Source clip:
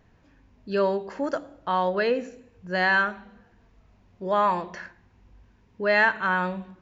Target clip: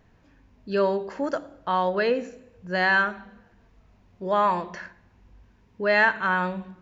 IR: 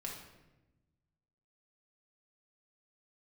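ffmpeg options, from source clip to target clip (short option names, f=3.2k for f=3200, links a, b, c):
-filter_complex "[0:a]asplit=2[a][b];[1:a]atrim=start_sample=2205,asetrate=41895,aresample=44100[c];[b][c]afir=irnorm=-1:irlink=0,volume=-19.5dB[d];[a][d]amix=inputs=2:normalize=0"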